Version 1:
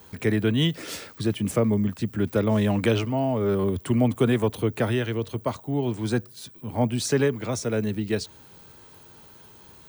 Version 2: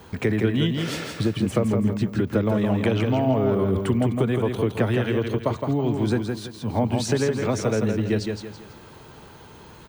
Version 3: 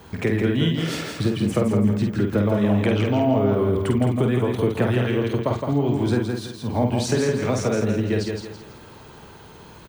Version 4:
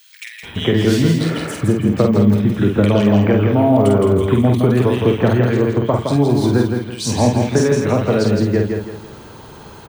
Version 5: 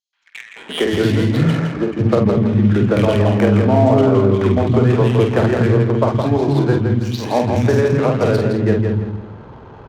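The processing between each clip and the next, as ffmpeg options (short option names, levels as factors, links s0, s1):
-af "acompressor=threshold=0.0501:ratio=6,lowpass=f=3000:p=1,aecho=1:1:165|330|495|660:0.562|0.197|0.0689|0.0241,volume=2.24"
-filter_complex "[0:a]asplit=2[s0][s1];[s1]adelay=49,volume=0.596[s2];[s0][s2]amix=inputs=2:normalize=0"
-filter_complex "[0:a]acrossover=split=2300[s0][s1];[s0]adelay=430[s2];[s2][s1]amix=inputs=2:normalize=0,volume=2.11"
-filter_complex "[0:a]acrossover=split=260|5700[s0][s1][s2];[s1]adelay=130[s3];[s0]adelay=370[s4];[s4][s3][s2]amix=inputs=3:normalize=0,aresample=16000,aresample=44100,adynamicsmooth=sensitivity=3.5:basefreq=1100,volume=1.19"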